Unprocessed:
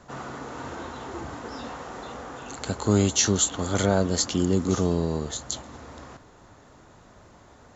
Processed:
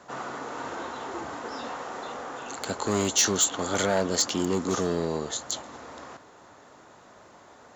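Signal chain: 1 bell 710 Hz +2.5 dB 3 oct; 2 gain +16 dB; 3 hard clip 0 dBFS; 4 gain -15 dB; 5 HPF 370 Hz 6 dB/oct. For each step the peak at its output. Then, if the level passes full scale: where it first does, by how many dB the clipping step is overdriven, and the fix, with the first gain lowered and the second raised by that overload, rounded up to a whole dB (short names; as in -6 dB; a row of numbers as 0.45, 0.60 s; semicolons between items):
-6.5, +9.5, 0.0, -15.0, -12.0 dBFS; step 2, 9.5 dB; step 2 +6 dB, step 4 -5 dB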